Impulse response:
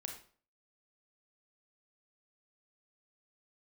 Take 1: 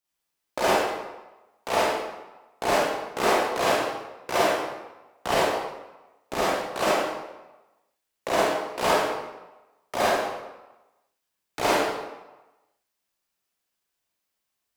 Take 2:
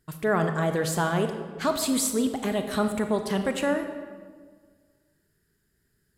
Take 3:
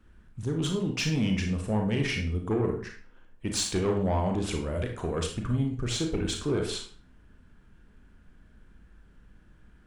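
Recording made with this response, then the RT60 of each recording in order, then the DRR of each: 3; 1.1, 1.7, 0.45 s; -8.5, 6.5, 2.5 dB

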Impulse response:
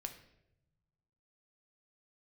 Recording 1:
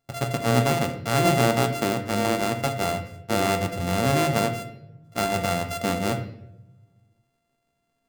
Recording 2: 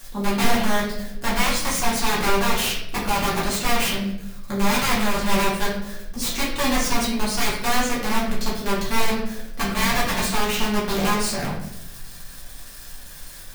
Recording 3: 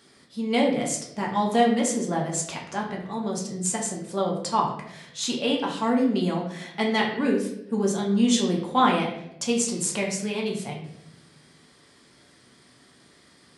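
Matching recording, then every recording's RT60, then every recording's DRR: 1; 0.85, 0.80, 0.85 s; 5.0, -8.5, -2.0 dB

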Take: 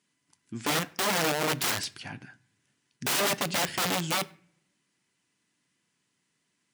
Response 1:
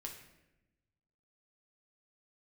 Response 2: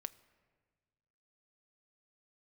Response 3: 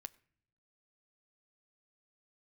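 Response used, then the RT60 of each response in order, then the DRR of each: 3; 0.95 s, 1.5 s, not exponential; 0.5, 13.5, 14.5 dB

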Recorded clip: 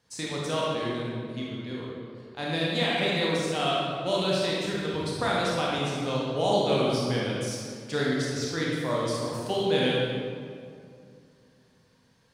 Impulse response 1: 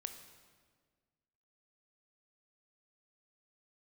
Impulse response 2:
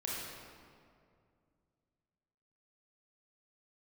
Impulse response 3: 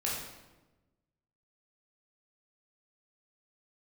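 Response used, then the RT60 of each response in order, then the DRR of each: 2; 1.6, 2.3, 1.1 s; 7.0, -5.5, -5.5 dB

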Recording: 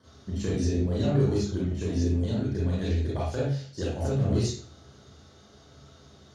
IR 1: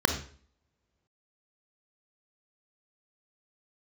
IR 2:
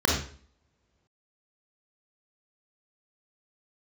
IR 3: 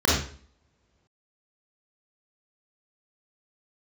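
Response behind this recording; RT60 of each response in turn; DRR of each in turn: 3; 0.50, 0.50, 0.50 s; 7.0, -1.5, -5.5 dB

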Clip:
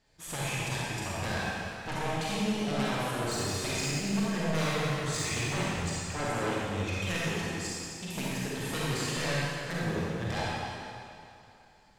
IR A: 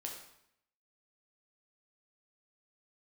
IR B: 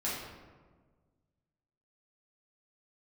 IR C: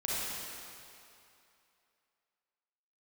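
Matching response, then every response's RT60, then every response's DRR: C; 0.75, 1.5, 2.7 s; -0.5, -9.0, -7.5 dB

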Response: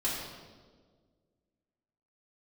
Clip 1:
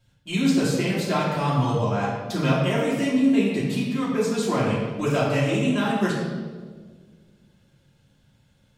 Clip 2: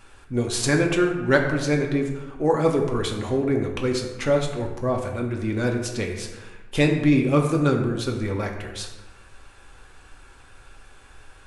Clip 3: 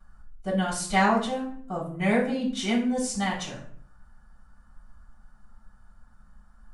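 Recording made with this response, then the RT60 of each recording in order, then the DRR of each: 1; 1.6, 1.2, 0.55 s; -8.0, 1.0, -9.0 dB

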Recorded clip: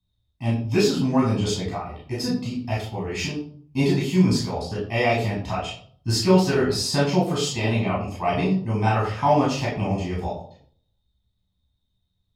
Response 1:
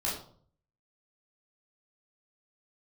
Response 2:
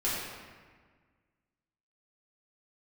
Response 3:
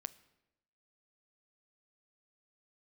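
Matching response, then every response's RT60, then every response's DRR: 1; 0.55, 1.6, 0.95 s; -7.0, -9.5, 14.5 dB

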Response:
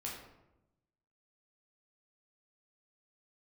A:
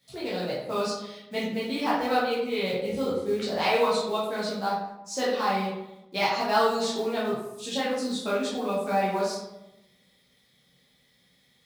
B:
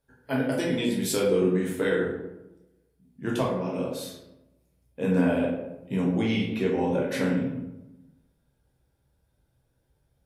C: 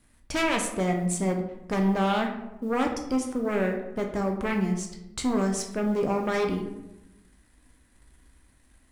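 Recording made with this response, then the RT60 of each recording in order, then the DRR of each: B; 0.95, 0.95, 0.95 s; -8.0, -4.0, 2.5 dB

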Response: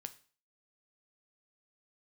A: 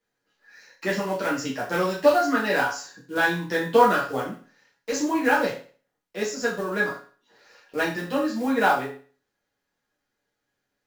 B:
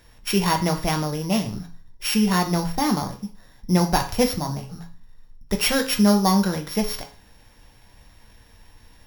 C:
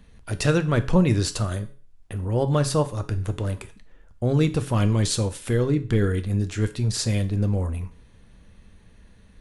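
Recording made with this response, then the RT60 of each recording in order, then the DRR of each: C; 0.40, 0.40, 0.40 s; -6.0, 3.0, 9.0 dB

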